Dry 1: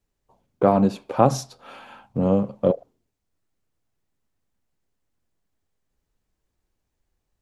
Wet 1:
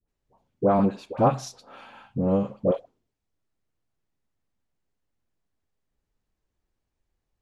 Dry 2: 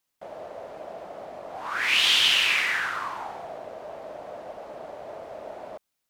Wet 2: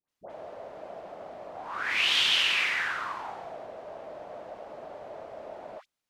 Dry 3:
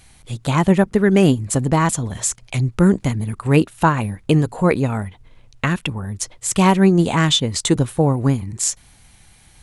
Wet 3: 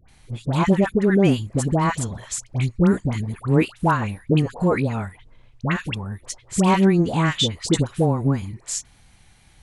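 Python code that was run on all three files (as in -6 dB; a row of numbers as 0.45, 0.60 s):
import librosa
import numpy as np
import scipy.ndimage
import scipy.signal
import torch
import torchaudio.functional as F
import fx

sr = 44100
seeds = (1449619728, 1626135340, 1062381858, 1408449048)

y = fx.high_shelf(x, sr, hz=9200.0, db=-11.5)
y = fx.dispersion(y, sr, late='highs', ms=86.0, hz=1100.0)
y = F.gain(torch.from_numpy(y), -3.0).numpy()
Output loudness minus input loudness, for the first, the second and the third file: -3.0, -4.0, -3.0 LU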